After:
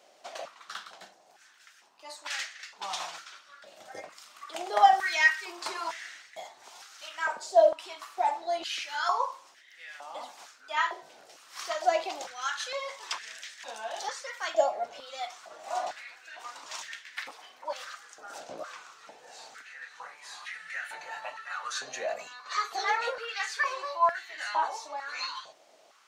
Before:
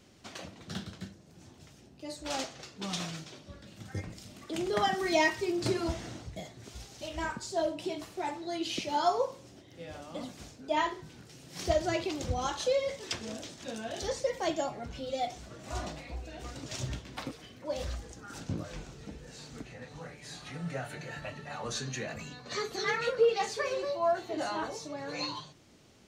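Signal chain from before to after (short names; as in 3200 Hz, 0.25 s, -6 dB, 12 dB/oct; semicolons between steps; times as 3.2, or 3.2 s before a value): 8.21–8.93 octaver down 2 oct, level +1 dB; stepped high-pass 2.2 Hz 650–1800 Hz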